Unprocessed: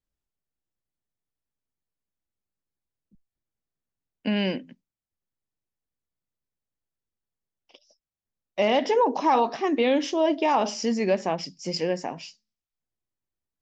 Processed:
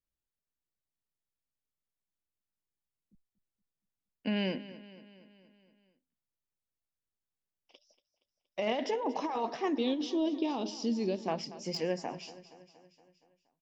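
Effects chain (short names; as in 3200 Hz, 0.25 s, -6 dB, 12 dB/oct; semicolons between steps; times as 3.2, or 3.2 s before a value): 9.78–11.28 EQ curve 210 Hz 0 dB, 310 Hz +5 dB, 570 Hz -8 dB, 2000 Hz -15 dB, 3800 Hz +5 dB, 6600 Hz -8 dB; negative-ratio compressor -22 dBFS, ratio -0.5; on a send: feedback echo 0.235 s, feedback 59%, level -16.5 dB; on the sum: slew limiter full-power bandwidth 330 Hz; gain -7.5 dB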